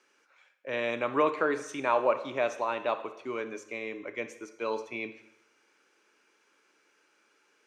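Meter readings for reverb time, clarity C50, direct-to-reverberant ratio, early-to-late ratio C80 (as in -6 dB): 0.80 s, 11.5 dB, 10.0 dB, 14.5 dB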